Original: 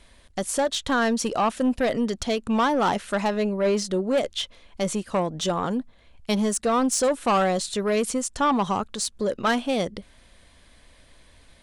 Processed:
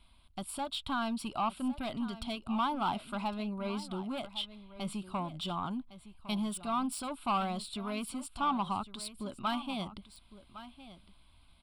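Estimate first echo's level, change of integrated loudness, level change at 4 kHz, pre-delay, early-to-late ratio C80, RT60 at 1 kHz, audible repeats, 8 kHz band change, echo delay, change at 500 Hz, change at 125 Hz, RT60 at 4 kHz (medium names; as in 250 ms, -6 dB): -15.0 dB, -11.5 dB, -8.5 dB, no reverb, no reverb, no reverb, 1, -16.5 dB, 1108 ms, -18.5 dB, -9.0 dB, no reverb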